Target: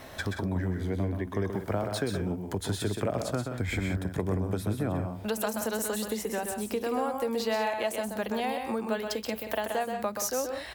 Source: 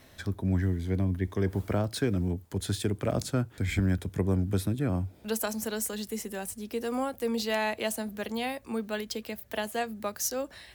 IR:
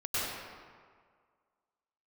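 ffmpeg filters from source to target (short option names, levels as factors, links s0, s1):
-filter_complex "[0:a]equalizer=f=830:w=0.69:g=8,acompressor=threshold=0.0126:ratio=3,asplit=2[s0][s1];[s1]aecho=0:1:128.3|177.8:0.501|0.316[s2];[s0][s2]amix=inputs=2:normalize=0,volume=2.11"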